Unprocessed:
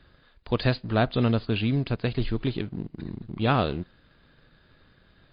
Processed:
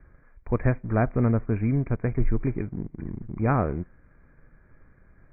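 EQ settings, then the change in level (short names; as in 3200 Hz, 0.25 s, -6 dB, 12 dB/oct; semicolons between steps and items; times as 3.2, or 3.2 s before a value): Chebyshev low-pass 2400 Hz, order 10; air absorption 200 m; low shelf 66 Hz +11.5 dB; 0.0 dB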